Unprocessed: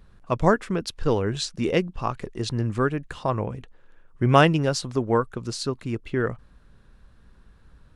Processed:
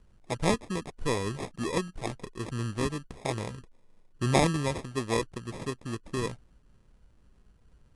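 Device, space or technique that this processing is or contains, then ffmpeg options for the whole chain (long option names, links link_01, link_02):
crushed at another speed: -af "asetrate=88200,aresample=44100,acrusher=samples=15:mix=1:aa=0.000001,asetrate=22050,aresample=44100,volume=-7dB"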